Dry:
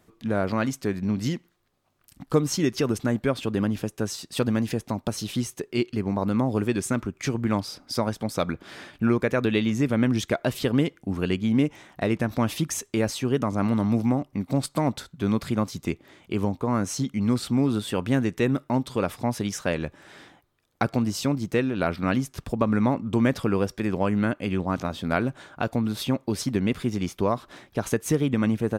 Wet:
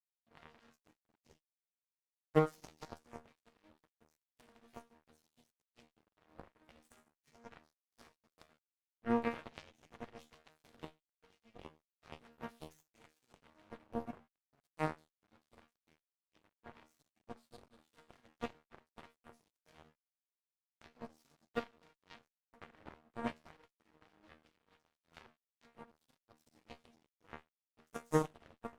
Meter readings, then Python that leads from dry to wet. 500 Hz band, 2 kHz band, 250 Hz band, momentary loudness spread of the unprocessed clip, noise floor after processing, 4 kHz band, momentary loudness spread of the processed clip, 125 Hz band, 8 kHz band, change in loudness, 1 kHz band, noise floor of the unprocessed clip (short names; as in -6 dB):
-17.5 dB, -20.0 dB, -23.5 dB, 6 LU, under -85 dBFS, -25.5 dB, 25 LU, -23.5 dB, -28.0 dB, -15.0 dB, -16.0 dB, -64 dBFS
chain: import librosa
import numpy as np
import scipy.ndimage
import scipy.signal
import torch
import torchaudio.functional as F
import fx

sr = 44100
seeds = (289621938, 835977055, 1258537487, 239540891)

y = fx.resonator_bank(x, sr, root=51, chord='fifth', decay_s=0.7)
y = np.sign(y) * np.maximum(np.abs(y) - 10.0 ** (-45.0 / 20.0), 0.0)
y = fx.cheby_harmonics(y, sr, harmonics=(3, 6, 7), levels_db=(-14, -31, -23), full_scale_db=-23.5)
y = F.gain(torch.from_numpy(y), 9.0).numpy()